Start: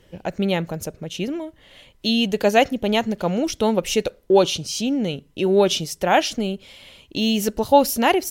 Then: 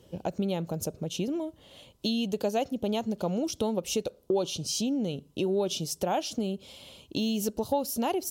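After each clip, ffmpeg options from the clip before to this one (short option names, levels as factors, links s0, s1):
-af "equalizer=f=1900:w=1.6:g=-14.5,acompressor=threshold=0.0398:ratio=3,highpass=68"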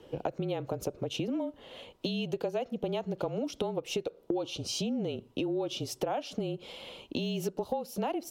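-af "bass=f=250:g=-12,treble=f=4000:g=-15,acompressor=threshold=0.0141:ratio=6,afreqshift=-33,volume=2.37"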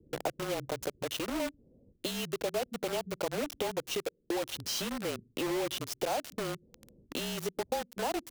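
-filter_complex "[0:a]acrossover=split=320[s0][s1];[s0]alimiter=level_in=4.47:limit=0.0631:level=0:latency=1:release=473,volume=0.224[s2];[s1]acrusher=bits=5:mix=0:aa=0.000001[s3];[s2][s3]amix=inputs=2:normalize=0"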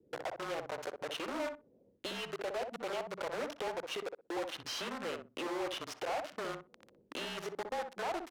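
-filter_complex "[0:a]bandpass=f=1300:t=q:w=0.65:csg=0,asoftclip=type=tanh:threshold=0.0141,asplit=2[s0][s1];[s1]adelay=62,lowpass=f=890:p=1,volume=0.631,asplit=2[s2][s3];[s3]adelay=62,lowpass=f=890:p=1,volume=0.19,asplit=2[s4][s5];[s5]adelay=62,lowpass=f=890:p=1,volume=0.19[s6];[s2][s4][s6]amix=inputs=3:normalize=0[s7];[s0][s7]amix=inputs=2:normalize=0,volume=1.58"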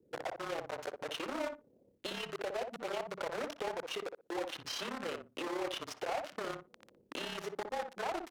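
-af "tremolo=f=34:d=0.519,volume=1.26"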